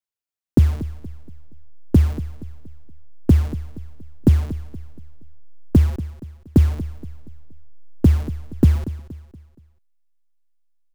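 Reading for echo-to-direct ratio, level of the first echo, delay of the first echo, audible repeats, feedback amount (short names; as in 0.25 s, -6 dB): -14.0 dB, -15.0 dB, 0.236 s, 3, 41%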